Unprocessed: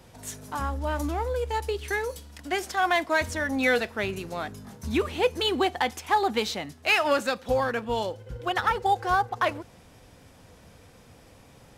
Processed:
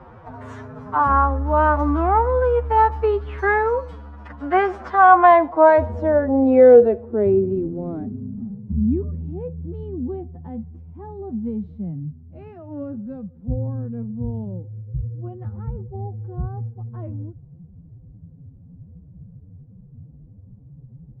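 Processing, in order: low-pass sweep 1200 Hz -> 160 Hz, 2.71–5.1; time stretch by phase-locked vocoder 1.8×; gain +8.5 dB

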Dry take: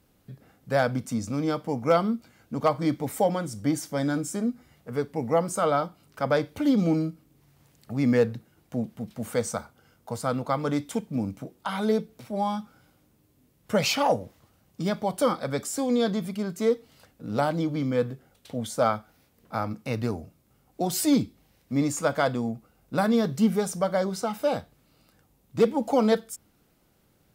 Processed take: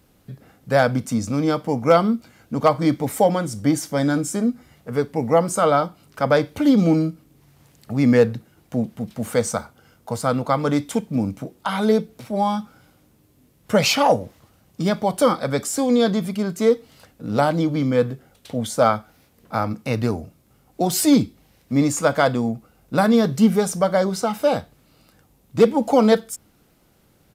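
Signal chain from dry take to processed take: downsampling 32000 Hz; gain +6.5 dB

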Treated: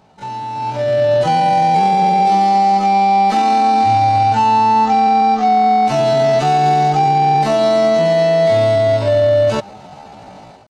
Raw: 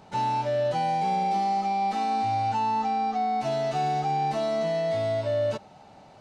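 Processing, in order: limiter -21 dBFS, peak gain reduction 4 dB; AGC gain up to 15 dB; tempo 0.58×

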